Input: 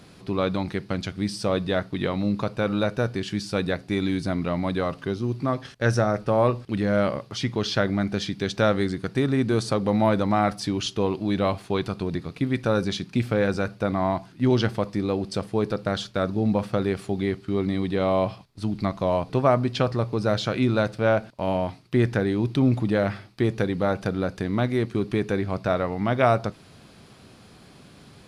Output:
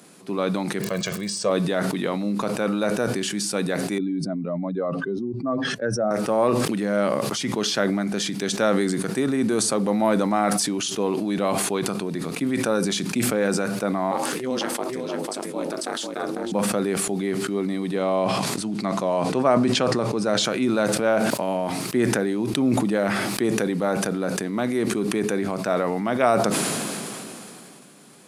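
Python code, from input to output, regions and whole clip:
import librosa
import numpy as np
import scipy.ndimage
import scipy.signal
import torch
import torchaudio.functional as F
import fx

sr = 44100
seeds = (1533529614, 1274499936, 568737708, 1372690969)

y = fx.steep_lowpass(x, sr, hz=8000.0, slope=36, at=(0.81, 1.49), fade=0.02)
y = fx.comb(y, sr, ms=1.8, depth=0.75, at=(0.81, 1.49), fade=0.02)
y = fx.dmg_crackle(y, sr, seeds[0], per_s=100.0, level_db=-39.0, at=(0.81, 1.49), fade=0.02)
y = fx.chain(y, sr, fx.spec_expand(power=1.8),
    fx.highpass(hz=150.0, slope=12), at=(3.98, 6.11))
y = fx.chain(y, sr, fx.low_shelf(hz=220.0, db=-10.0),
    fx.ring_mod(carrier_hz=130.0),
    fx.echo_single(ms=497, db=-6.0), at=(14.11, 16.52))
y = fx.chain(y, sr, fx.lowpass(hz=8800.0, slope=12),
    fx.sustainer(db_per_s=110.0), at=(18.02, 20.44))
y = scipy.signal.sosfilt(scipy.signal.butter(4, 180.0, 'highpass', fs=sr, output='sos'), y)
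y = fx.high_shelf_res(y, sr, hz=6000.0, db=8.5, q=1.5)
y = fx.sustainer(y, sr, db_per_s=20.0)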